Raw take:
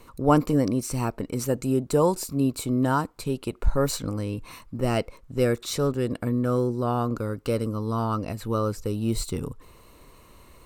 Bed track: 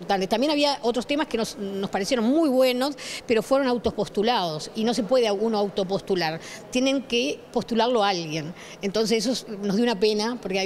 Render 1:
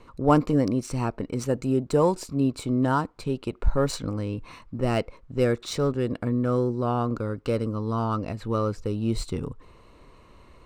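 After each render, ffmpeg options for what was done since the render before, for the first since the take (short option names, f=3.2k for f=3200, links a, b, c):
-af "adynamicsmooth=sensitivity=4:basefreq=4.8k"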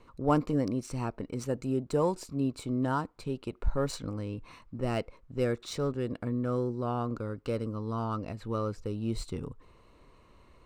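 -af "volume=-6.5dB"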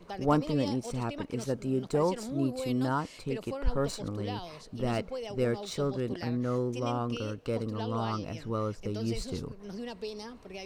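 -filter_complex "[1:a]volume=-17.5dB[a];[0:a][a]amix=inputs=2:normalize=0"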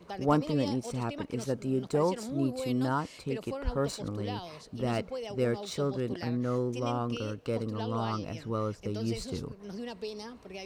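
-af "highpass=46"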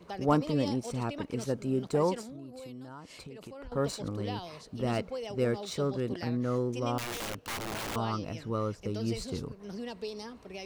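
-filter_complex "[0:a]asettb=1/sr,asplit=3[a][b][c];[a]atrim=end=2.214[d];[b]atrim=start=2.21:end=3.72,asetpts=PTS-STARTPTS,afade=t=in:d=0.004:c=qsin,afade=t=out:st=1.506:d=0.004:c=qsin,acompressor=threshold=-41dB:ratio=10:attack=3.2:release=140:knee=1:detection=peak[e];[c]atrim=start=3.716[f];[d][e]acrossfade=d=0.004:c1=hsin:c2=qsin[g];[g][f]acrossfade=d=0.004:c1=qsin:c2=hsin,asettb=1/sr,asplit=3[h][i][j];[h]atrim=end=6.984[k];[i]atrim=start=6.98:end=7.96,asetpts=PTS-STARTPTS,afade=t=in:d=0.004:c=qsin,afade=t=out:st=0.976:d=0.004:c=qsin,aeval=exprs='(mod(35.5*val(0)+1,2)-1)/35.5':c=same[l];[j]atrim=start=7.956[m];[k][l]acrossfade=d=0.004:c1=hsin:c2=qsin[n];[n][m]acrossfade=d=0.004:c1=qsin:c2=hsin"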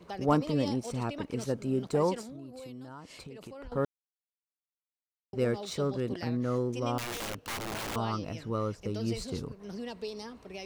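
-filter_complex "[0:a]asplit=3[a][b][c];[a]atrim=end=3.85,asetpts=PTS-STARTPTS,afade=t=out:st=3.846:d=0.004:c=hsin[d];[b]atrim=start=3.85:end=5.33,asetpts=PTS-STARTPTS,volume=0[e];[c]atrim=start=5.33,asetpts=PTS-STARTPTS,afade=t=in:d=0.004:c=hsin[f];[d][e][f]concat=n=3:v=0:a=1"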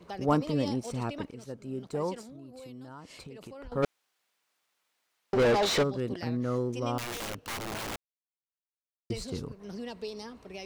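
-filter_complex "[0:a]asplit=3[a][b][c];[a]afade=t=out:st=3.82:d=0.02[d];[b]asplit=2[e][f];[f]highpass=f=720:p=1,volume=32dB,asoftclip=type=tanh:threshold=-16.5dB[g];[e][g]amix=inputs=2:normalize=0,lowpass=f=2.7k:p=1,volume=-6dB,afade=t=in:st=3.82:d=0.02,afade=t=out:st=5.82:d=0.02[h];[c]afade=t=in:st=5.82:d=0.02[i];[d][h][i]amix=inputs=3:normalize=0,asplit=4[j][k][l][m];[j]atrim=end=1.31,asetpts=PTS-STARTPTS,afade=t=out:st=1.306:d=0.004:c=hsin:silence=0.251189[n];[k]atrim=start=1.31:end=7.96,asetpts=PTS-STARTPTS,afade=t=in:d=1.68:silence=0.251189,afade=t=out:st=6.646:d=0.004:c=hsin[o];[l]atrim=start=7.96:end=9.1,asetpts=PTS-STARTPTS,volume=0[p];[m]atrim=start=9.1,asetpts=PTS-STARTPTS,afade=t=in:d=0.004:c=hsin[q];[n][o][p][q]concat=n=4:v=0:a=1"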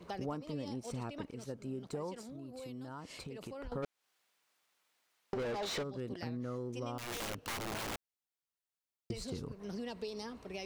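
-af "acompressor=threshold=-37dB:ratio=6"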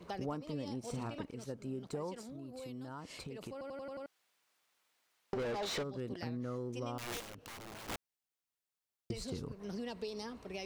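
-filter_complex "[0:a]asettb=1/sr,asplit=3[a][b][c];[a]atrim=end=0.794[d];[b]atrim=start=0.79:end=1.21,asetpts=PTS-STARTPTS,afade=t=in:d=0.004:c=qsin,afade=t=out:st=0.416:d=0.004:c=qsin,asplit=2[e][f];[f]adelay=44,volume=-7.5dB[g];[e][g]amix=inputs=2:normalize=0,atrim=end_sample=18522[h];[c]atrim=start=1.206[i];[d][h]acrossfade=d=0.004:c1=hsin:c2=qsin[j];[j][i]acrossfade=d=0.004:c1=qsin:c2=hsin,asplit=3[k][l][m];[k]afade=t=out:st=7.19:d=0.02[n];[l]acompressor=threshold=-47dB:ratio=6:attack=3.2:release=140:knee=1:detection=peak,afade=t=in:st=7.19:d=0.02,afade=t=out:st=7.88:d=0.02[o];[m]afade=t=in:st=7.88:d=0.02[p];[n][o][p]amix=inputs=3:normalize=0,asplit=7[q][r][s][t][u][v][w];[q]atrim=end=3.612[x];[r]atrim=start=3.518:end=3.612[y];[s]atrim=start=3.518:end=3.612[z];[t]atrim=start=3.518:end=3.612[aa];[u]atrim=start=3.518:end=3.612[ab];[v]atrim=start=3.518:end=3.612[ac];[w]atrim=start=4.058[ad];[x][y]acrossfade=d=0.004:c1=hsin:c2=hsin[ae];[ae][z]acrossfade=d=0.004:c1=hsin:c2=hsin[af];[af][aa]acrossfade=d=0.004:c1=hsin:c2=hsin[ag];[ag][ab]acrossfade=d=0.004:c1=hsin:c2=hsin[ah];[ah][ac]acrossfade=d=0.004:c1=hsin:c2=hsin[ai];[ai][ad]acrossfade=d=0.004:c1=hsin:c2=hsin"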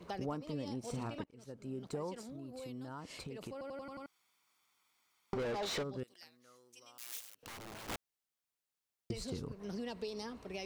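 -filter_complex "[0:a]asettb=1/sr,asplit=3[a][b][c];[a]atrim=end=3.814[d];[b]atrim=start=3.81:end=5.37,asetpts=PTS-STARTPTS,afade=t=in:d=0.004:c=qsin,afade=t=out:st=1.556:d=0.004:c=qsin,aecho=1:1:0.9:0.55,atrim=end_sample=68796[e];[c]atrim=start=5.366[f];[d][e]acrossfade=d=0.004:c1=hsin:c2=qsin[g];[g][f]acrossfade=d=0.004:c1=qsin:c2=hsin,asettb=1/sr,asplit=3[h][i][j];[h]atrim=end=6.034[k];[i]atrim=start=6.03:end=7.43,asetpts=PTS-STARTPTS,afade=t=in:d=0.004:c=qsin,afade=t=out:st=1.396:d=0.004:c=qsin,aderivative[l];[j]atrim=start=7.426[m];[k][l]acrossfade=d=0.004:c1=hsin:c2=qsin[n];[n][m]acrossfade=d=0.004:c1=qsin:c2=hsin,asplit=2[o][p];[o]atrim=end=1.24,asetpts=PTS-STARTPTS,afade=t=out:st=1.236:d=0.004:c=hsin:silence=0.0668344[q];[p]atrim=start=1.24,asetpts=PTS-STARTPTS,afade=t=in:d=0.59:silence=0.0668344[r];[q][r]concat=n=2:v=0:a=1"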